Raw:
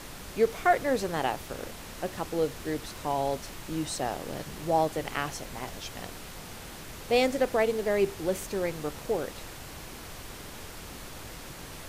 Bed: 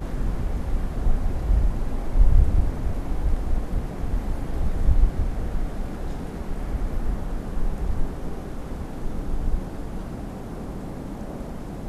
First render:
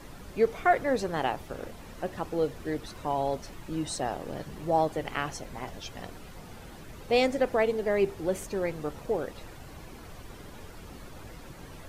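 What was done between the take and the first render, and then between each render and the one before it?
noise reduction 10 dB, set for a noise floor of -44 dBFS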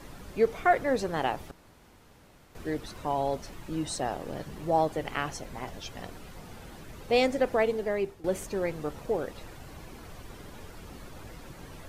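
1.51–2.55 s: room tone; 7.54–8.24 s: fade out equal-power, to -15 dB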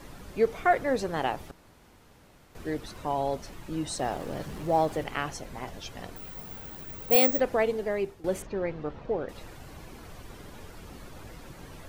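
3.99–5.04 s: companding laws mixed up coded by mu; 6.16–7.40 s: careless resampling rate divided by 2×, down none, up zero stuff; 8.42–9.29 s: distance through air 220 m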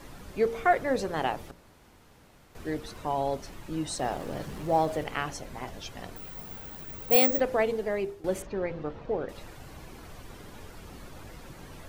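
de-hum 57.29 Hz, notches 11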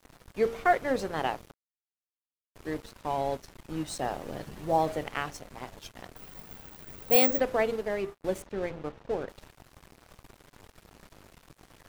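crossover distortion -43 dBFS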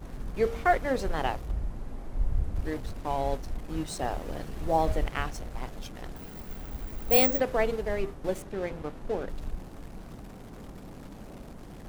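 add bed -11.5 dB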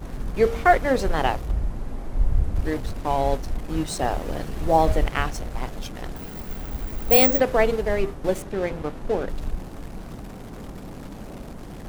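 trim +7 dB; peak limiter -3 dBFS, peak gain reduction 2.5 dB

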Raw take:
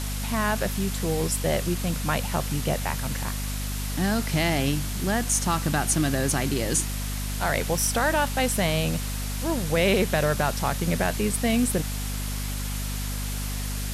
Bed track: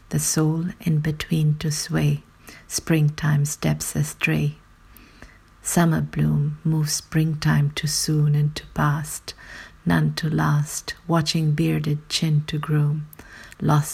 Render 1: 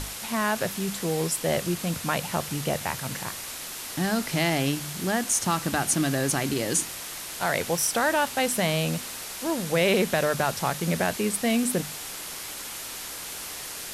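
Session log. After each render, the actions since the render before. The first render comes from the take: hum notches 50/100/150/200/250 Hz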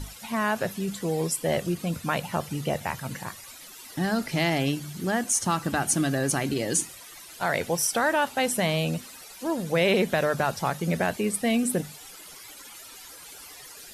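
noise reduction 14 dB, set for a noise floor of -37 dBFS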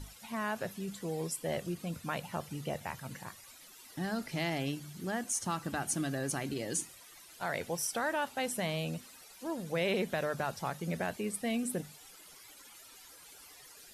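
trim -9.5 dB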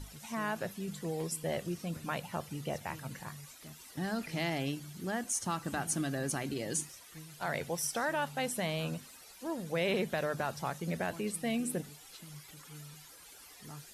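add bed track -30.5 dB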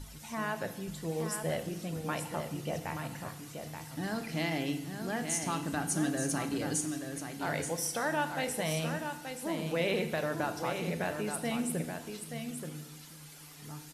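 delay 879 ms -7 dB; FDN reverb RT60 0.93 s, low-frequency decay 1.4×, high-frequency decay 0.95×, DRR 7.5 dB

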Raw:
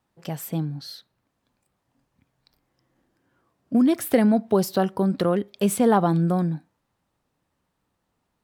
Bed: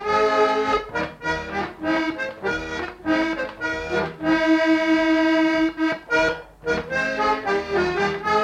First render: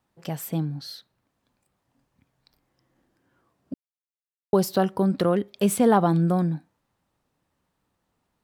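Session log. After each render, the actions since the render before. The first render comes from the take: 3.74–4.53 s: mute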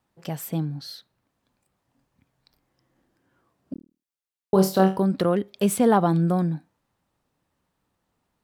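3.73–5.00 s: flutter echo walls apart 4.5 m, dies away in 0.29 s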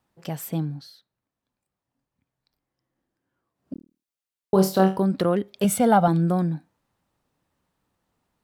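0.70–3.75 s: dip -11 dB, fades 0.21 s; 5.64–6.08 s: comb 1.4 ms, depth 69%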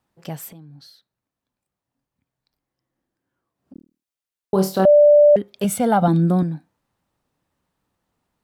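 0.48–3.75 s: compression 8:1, threshold -40 dBFS; 4.85–5.36 s: bleep 589 Hz -7.5 dBFS; 6.02–6.43 s: small resonant body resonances 240/3700 Hz, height 14 dB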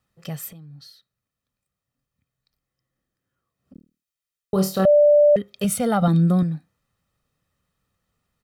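peaking EQ 700 Hz -9 dB 0.81 oct; comb 1.6 ms, depth 54%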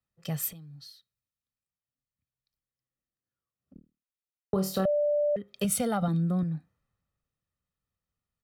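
compression 10:1, threshold -25 dBFS, peak gain reduction 12.5 dB; three bands expanded up and down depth 40%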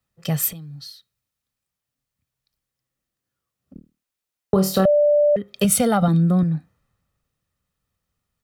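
trim +10 dB

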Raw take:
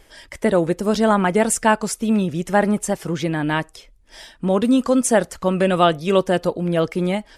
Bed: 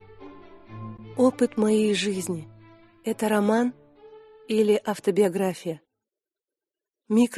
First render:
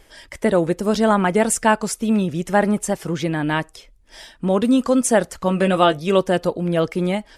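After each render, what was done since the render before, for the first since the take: 5.44–5.99 s: doubling 15 ms -8.5 dB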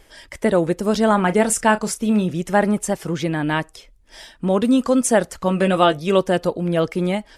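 1.10–2.32 s: doubling 33 ms -13 dB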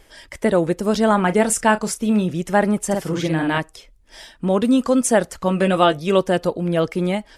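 2.86–3.58 s: doubling 50 ms -3 dB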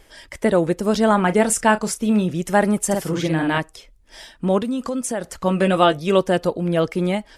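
2.42–3.11 s: treble shelf 7 kHz +7 dB; 4.58–5.37 s: compression 3:1, threshold -23 dBFS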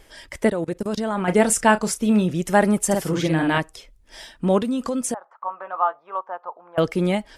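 0.49–1.28 s: level held to a coarse grid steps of 24 dB; 5.14–6.78 s: Butterworth band-pass 1 kHz, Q 2.1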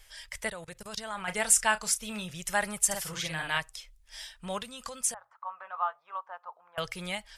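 amplifier tone stack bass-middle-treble 10-0-10; hum notches 60/120 Hz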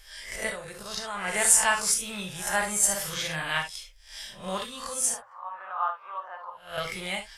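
reverse spectral sustain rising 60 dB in 0.43 s; gated-style reverb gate 90 ms flat, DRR 3.5 dB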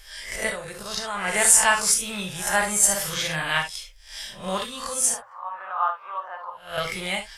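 trim +4.5 dB; peak limiter -3 dBFS, peak gain reduction 2 dB

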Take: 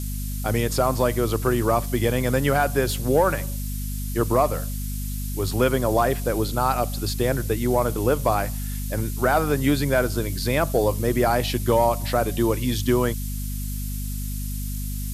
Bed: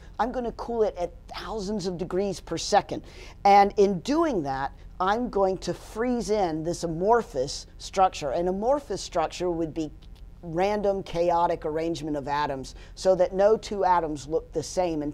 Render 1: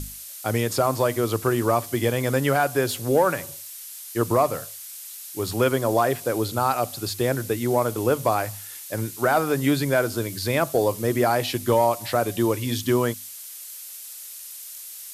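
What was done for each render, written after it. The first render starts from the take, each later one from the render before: hum notches 50/100/150/200/250 Hz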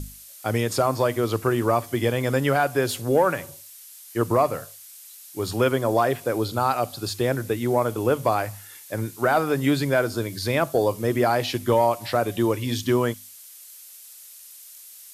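noise print and reduce 6 dB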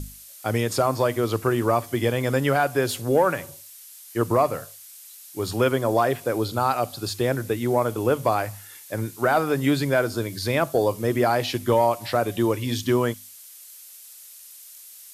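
no audible change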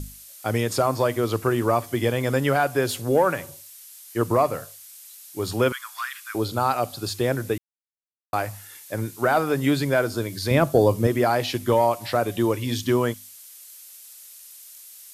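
5.72–6.35 s: steep high-pass 1.2 kHz 48 dB/octave; 7.58–8.33 s: mute; 10.51–11.07 s: bass shelf 350 Hz +9.5 dB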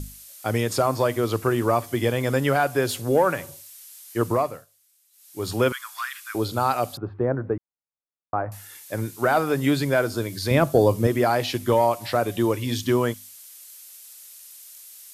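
4.27–5.50 s: dip -18.5 dB, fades 0.39 s; 6.97–8.52 s: low-pass 1.4 kHz 24 dB/octave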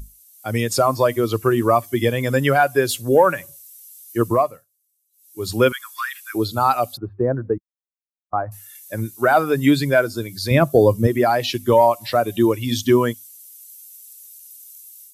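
expander on every frequency bin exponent 1.5; level rider gain up to 8.5 dB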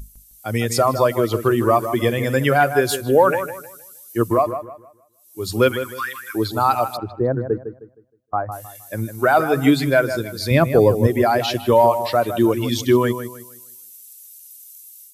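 feedback echo behind a low-pass 156 ms, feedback 31%, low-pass 2.7 kHz, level -10 dB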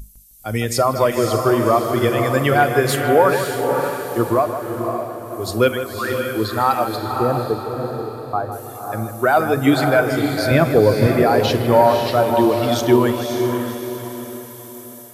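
on a send: echo that smears into a reverb 541 ms, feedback 43%, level -5 dB; on the sum: Schroeder reverb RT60 0.35 s, combs from 29 ms, DRR 16 dB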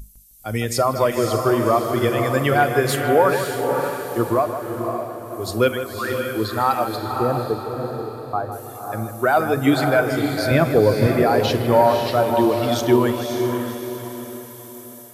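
trim -2 dB

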